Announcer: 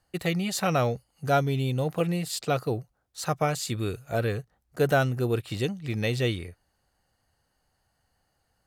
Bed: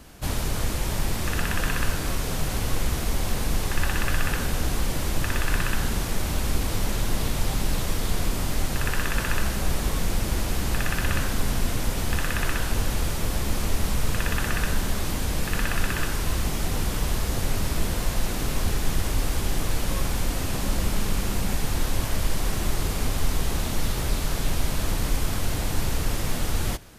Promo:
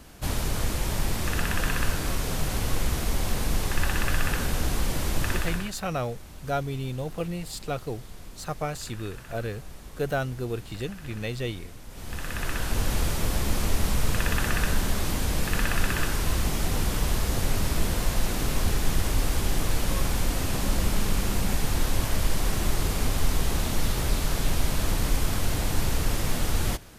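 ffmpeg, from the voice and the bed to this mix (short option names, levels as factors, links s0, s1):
-filter_complex "[0:a]adelay=5200,volume=0.562[s0];[1:a]volume=7.5,afade=t=out:st=5.31:d=0.42:silence=0.133352,afade=t=in:st=11.88:d=1.08:silence=0.11885[s1];[s0][s1]amix=inputs=2:normalize=0"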